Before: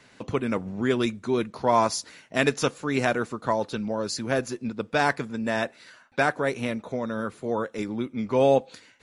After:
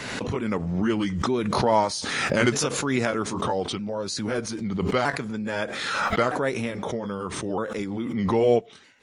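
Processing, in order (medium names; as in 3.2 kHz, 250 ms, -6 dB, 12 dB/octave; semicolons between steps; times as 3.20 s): sawtooth pitch modulation -3 st, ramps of 1263 ms; swell ahead of each attack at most 29 dB/s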